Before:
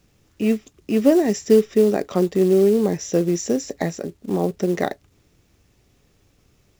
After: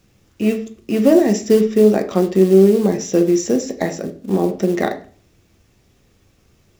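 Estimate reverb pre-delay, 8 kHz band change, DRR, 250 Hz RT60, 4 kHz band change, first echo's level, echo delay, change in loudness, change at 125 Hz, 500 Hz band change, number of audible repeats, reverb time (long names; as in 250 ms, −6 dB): 4 ms, +3.0 dB, 5.0 dB, 0.50 s, +3.0 dB, no echo audible, no echo audible, +4.0 dB, +4.0 dB, +3.5 dB, no echo audible, 0.45 s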